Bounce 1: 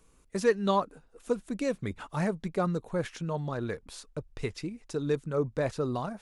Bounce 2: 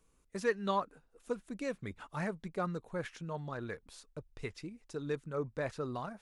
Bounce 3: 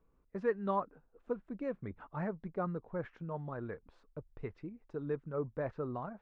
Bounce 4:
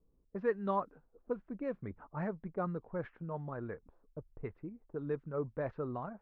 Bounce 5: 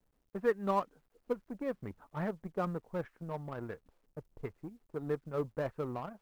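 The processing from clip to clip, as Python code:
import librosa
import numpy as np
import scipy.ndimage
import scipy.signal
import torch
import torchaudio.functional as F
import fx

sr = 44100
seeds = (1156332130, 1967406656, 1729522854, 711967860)

y1 = fx.dynamic_eq(x, sr, hz=1700.0, q=0.75, threshold_db=-44.0, ratio=4.0, max_db=6)
y1 = y1 * 10.0 ** (-8.5 / 20.0)
y2 = scipy.signal.sosfilt(scipy.signal.butter(2, 1300.0, 'lowpass', fs=sr, output='sos'), y1)
y3 = fx.env_lowpass(y2, sr, base_hz=500.0, full_db=-31.0)
y4 = fx.law_mismatch(y3, sr, coded='A')
y4 = y4 * 10.0 ** (3.5 / 20.0)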